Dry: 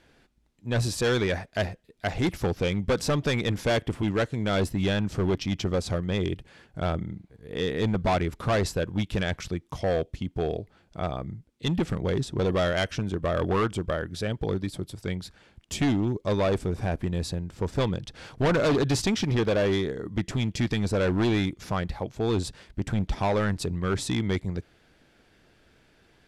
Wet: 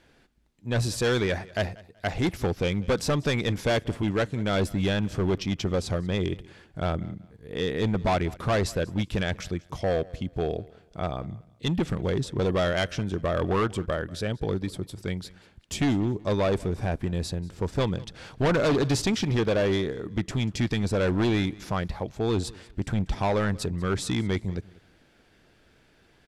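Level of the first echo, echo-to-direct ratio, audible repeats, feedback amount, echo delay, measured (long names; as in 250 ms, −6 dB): −22.0 dB, −21.5 dB, 2, 26%, 189 ms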